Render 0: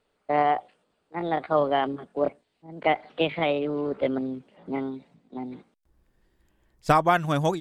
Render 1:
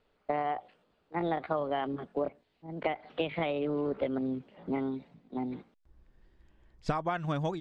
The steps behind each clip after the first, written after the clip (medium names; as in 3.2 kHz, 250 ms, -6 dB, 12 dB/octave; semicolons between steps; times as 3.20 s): low-pass 4.8 kHz 12 dB/octave; bass shelf 88 Hz +7 dB; compression 16:1, threshold -27 dBFS, peak gain reduction 14 dB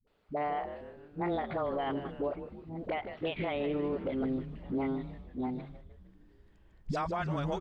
phase dispersion highs, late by 73 ms, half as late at 340 Hz; on a send: frequency-shifting echo 154 ms, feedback 57%, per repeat -110 Hz, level -12 dB; on the sum: peak limiter -24.5 dBFS, peak gain reduction 6.5 dB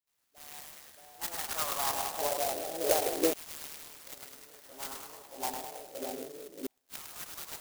two-band feedback delay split 740 Hz, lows 627 ms, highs 103 ms, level -5 dB; LFO high-pass saw down 0.3 Hz 340–4800 Hz; sampling jitter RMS 0.15 ms; trim +2 dB